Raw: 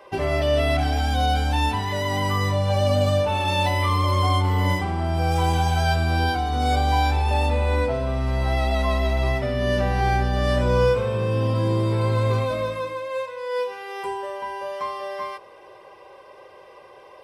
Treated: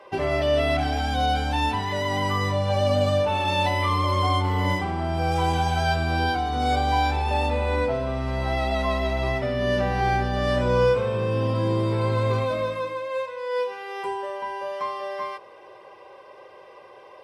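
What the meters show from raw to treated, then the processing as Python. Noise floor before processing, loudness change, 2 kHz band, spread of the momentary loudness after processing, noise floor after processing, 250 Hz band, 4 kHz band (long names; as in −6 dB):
−47 dBFS, −1.5 dB, −0.5 dB, 8 LU, −47 dBFS, −1.0 dB, −1.0 dB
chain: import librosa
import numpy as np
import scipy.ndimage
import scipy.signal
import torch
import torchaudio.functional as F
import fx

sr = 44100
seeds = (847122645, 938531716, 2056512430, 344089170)

y = fx.highpass(x, sr, hz=110.0, slope=6)
y = fx.high_shelf(y, sr, hz=9100.0, db=-10.5)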